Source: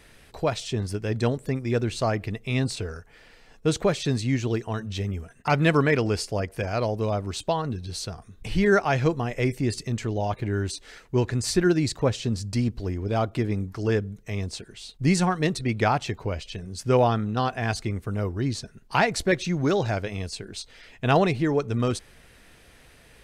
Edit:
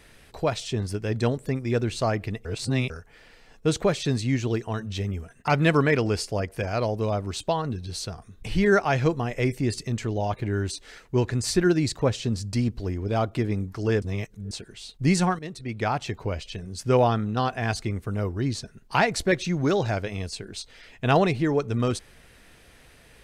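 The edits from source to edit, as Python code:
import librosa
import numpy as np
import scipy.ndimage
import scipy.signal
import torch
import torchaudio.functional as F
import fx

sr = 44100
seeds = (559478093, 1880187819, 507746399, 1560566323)

y = fx.edit(x, sr, fx.reverse_span(start_s=2.45, length_s=0.45),
    fx.reverse_span(start_s=14.02, length_s=0.49),
    fx.fade_in_from(start_s=15.39, length_s=0.85, floor_db=-15.5), tone=tone)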